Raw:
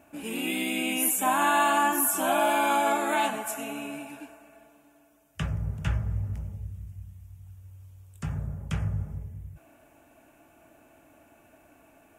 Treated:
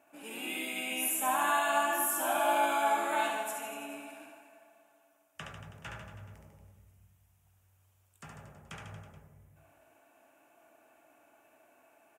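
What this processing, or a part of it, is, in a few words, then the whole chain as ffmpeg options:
filter by subtraction: -filter_complex "[0:a]asplit=2[a][b];[b]lowpass=790,volume=-1[c];[a][c]amix=inputs=2:normalize=0,aecho=1:1:70|147|231.7|324.9|427.4:0.631|0.398|0.251|0.158|0.1,volume=-8dB"

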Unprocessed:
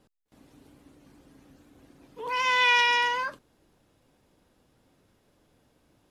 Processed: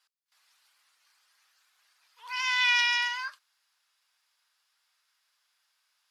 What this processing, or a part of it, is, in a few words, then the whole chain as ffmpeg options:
headphones lying on a table: -af "highpass=f=1.2k:w=0.5412,highpass=f=1.2k:w=1.3066,equalizer=f=4.8k:t=o:w=0.48:g=7,volume=-2dB"

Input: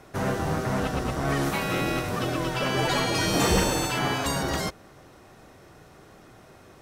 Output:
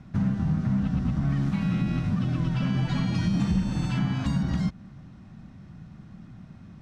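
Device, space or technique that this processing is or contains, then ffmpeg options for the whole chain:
jukebox: -af "lowpass=5.1k,lowshelf=f=290:t=q:w=3:g=13,acompressor=threshold=-16dB:ratio=4,volume=-6.5dB"

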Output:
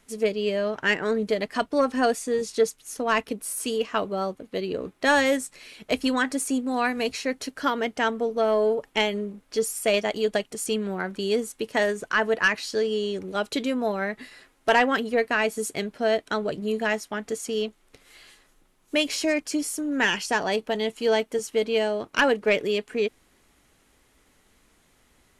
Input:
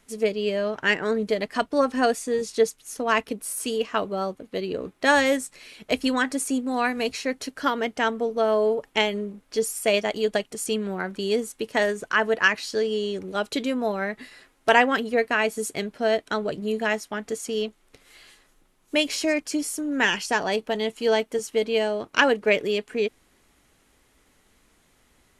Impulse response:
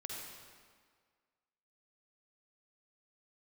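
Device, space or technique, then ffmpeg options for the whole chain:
saturation between pre-emphasis and de-emphasis: -af "highshelf=f=4.6k:g=9,asoftclip=type=tanh:threshold=-9.5dB,highshelf=f=4.6k:g=-9"

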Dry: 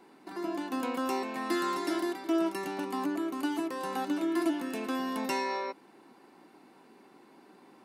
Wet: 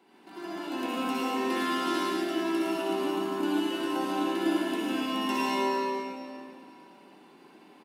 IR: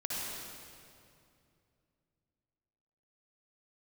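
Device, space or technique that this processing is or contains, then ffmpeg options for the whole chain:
PA in a hall: -filter_complex "[0:a]highpass=110,equalizer=f=3k:t=o:w=0.52:g=8,aecho=1:1:108:0.501[a];[1:a]atrim=start_sample=2205[b];[a][b]afir=irnorm=-1:irlink=0,volume=-3dB"

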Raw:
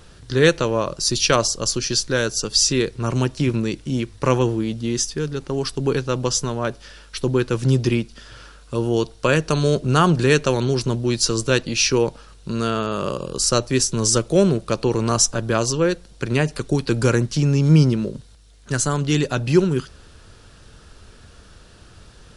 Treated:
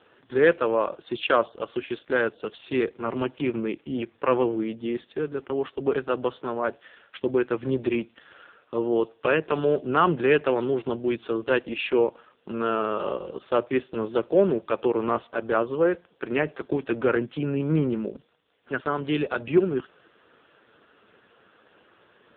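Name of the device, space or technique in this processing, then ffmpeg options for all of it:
telephone: -af "highpass=310,lowpass=3.1k,asoftclip=type=tanh:threshold=-6.5dB" -ar 8000 -c:a libopencore_amrnb -b:a 5150

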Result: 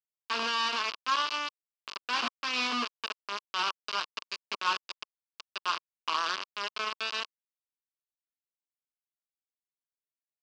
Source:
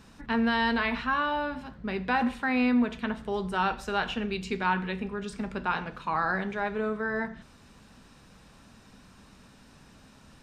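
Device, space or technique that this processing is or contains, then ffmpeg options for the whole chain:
hand-held game console: -af "acrusher=bits=3:mix=0:aa=0.000001,highpass=470,equalizer=f=520:t=q:w=4:g=-7,equalizer=f=770:t=q:w=4:g=-9,equalizer=f=1.1k:t=q:w=4:g=9,equalizer=f=1.9k:t=q:w=4:g=-7,equalizer=f=2.8k:t=q:w=4:g=7,equalizer=f=4.8k:t=q:w=4:g=7,lowpass=f=5.3k:w=0.5412,lowpass=f=5.3k:w=1.3066,volume=-4.5dB"

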